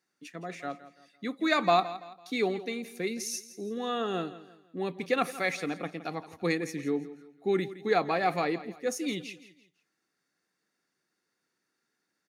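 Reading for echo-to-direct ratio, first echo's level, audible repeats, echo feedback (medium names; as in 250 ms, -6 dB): -15.0 dB, -15.5 dB, 3, 37%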